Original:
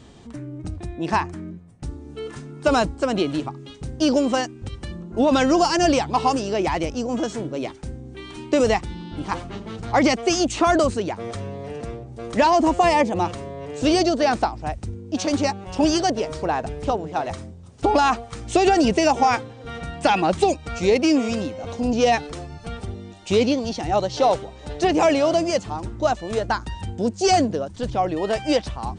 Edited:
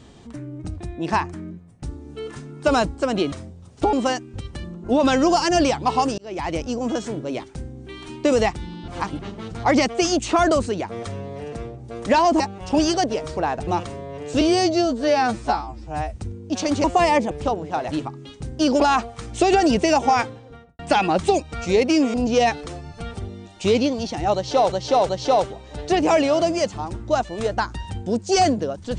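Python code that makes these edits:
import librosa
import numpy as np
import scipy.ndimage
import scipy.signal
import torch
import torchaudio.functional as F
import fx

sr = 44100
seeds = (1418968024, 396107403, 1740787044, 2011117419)

y = fx.studio_fade_out(x, sr, start_s=19.4, length_s=0.53)
y = fx.edit(y, sr, fx.swap(start_s=3.32, length_s=0.89, other_s=17.33, other_length_s=0.61),
    fx.fade_in_span(start_s=6.46, length_s=0.4),
    fx.reverse_span(start_s=9.16, length_s=0.31),
    fx.swap(start_s=12.68, length_s=0.47, other_s=15.46, other_length_s=1.27),
    fx.stretch_span(start_s=13.89, length_s=0.86, factor=2.0),
    fx.cut(start_s=21.28, length_s=0.52),
    fx.repeat(start_s=24.01, length_s=0.37, count=3), tone=tone)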